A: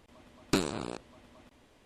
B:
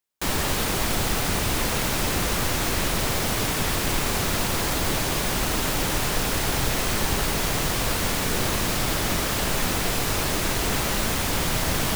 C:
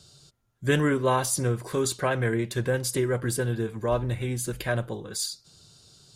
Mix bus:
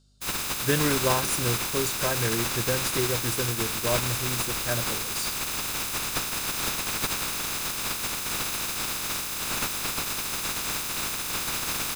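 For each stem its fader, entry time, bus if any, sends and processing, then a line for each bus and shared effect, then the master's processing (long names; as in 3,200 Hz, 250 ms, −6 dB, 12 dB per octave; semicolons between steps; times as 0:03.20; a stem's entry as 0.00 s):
−9.0 dB, 0.70 s, no send, no processing
−3.5 dB, 0.00 s, no send, ceiling on every frequency bin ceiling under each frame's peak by 23 dB; comb filter 0.8 ms, depth 34%
−1.5 dB, 0.00 s, no send, mains hum 50 Hz, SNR 20 dB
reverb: not used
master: expander for the loud parts 1.5 to 1, over −46 dBFS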